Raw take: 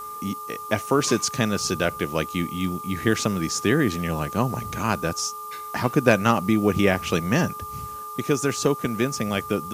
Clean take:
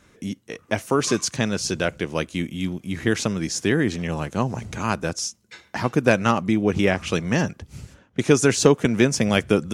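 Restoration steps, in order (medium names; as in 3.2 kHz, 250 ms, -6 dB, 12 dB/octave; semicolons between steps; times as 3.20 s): de-hum 425.4 Hz, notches 3; band-stop 1.2 kHz, Q 30; noise print and reduce 17 dB; trim 0 dB, from 8.09 s +6 dB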